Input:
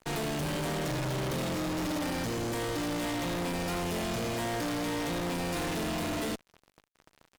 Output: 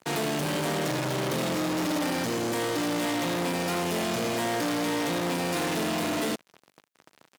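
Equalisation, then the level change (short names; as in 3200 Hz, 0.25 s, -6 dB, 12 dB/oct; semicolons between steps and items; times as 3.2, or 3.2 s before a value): HPF 160 Hz 12 dB/oct; +5.0 dB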